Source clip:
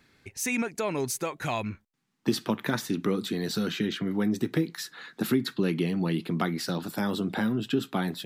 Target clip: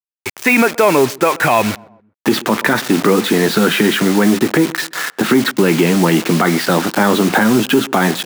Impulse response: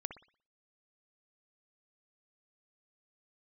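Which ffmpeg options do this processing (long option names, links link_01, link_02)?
-filter_complex "[0:a]asplit=2[link_01][link_02];[link_02]asoftclip=type=hard:threshold=-29.5dB,volume=-7.5dB[link_03];[link_01][link_03]amix=inputs=2:normalize=0,lowpass=2200,acrusher=bits=6:mix=0:aa=0.000001,highpass=frequency=510:poles=1,asplit=2[link_04][link_05];[link_05]adelay=128,lowpass=frequency=1300:poles=1,volume=-24dB,asplit=2[link_06][link_07];[link_07]adelay=128,lowpass=frequency=1300:poles=1,volume=0.5,asplit=2[link_08][link_09];[link_09]adelay=128,lowpass=frequency=1300:poles=1,volume=0.5[link_10];[link_06][link_08][link_10]amix=inputs=3:normalize=0[link_11];[link_04][link_11]amix=inputs=2:normalize=0,alimiter=level_in=22dB:limit=-1dB:release=50:level=0:latency=1,volume=-1dB"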